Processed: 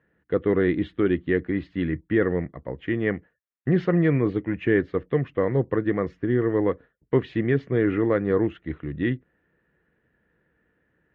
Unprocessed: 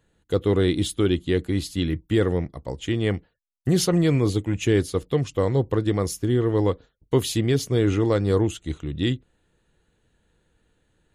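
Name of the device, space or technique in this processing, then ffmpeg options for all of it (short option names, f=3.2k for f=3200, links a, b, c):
bass cabinet: -af "highpass=85,equalizer=f=100:t=q:w=4:g=-9,equalizer=f=850:t=q:w=4:g=-5,equalizer=f=1.8k:t=q:w=4:g=8,lowpass=f=2.2k:w=0.5412,lowpass=f=2.2k:w=1.3066"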